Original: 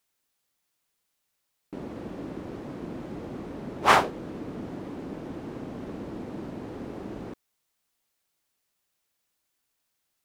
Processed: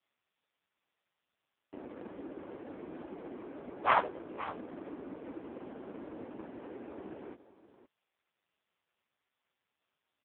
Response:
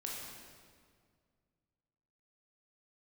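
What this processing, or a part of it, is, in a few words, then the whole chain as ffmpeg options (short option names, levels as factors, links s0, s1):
satellite phone: -af "highpass=310,lowpass=3100,aecho=1:1:520:0.188,volume=0.75" -ar 8000 -c:a libopencore_amrnb -b:a 4750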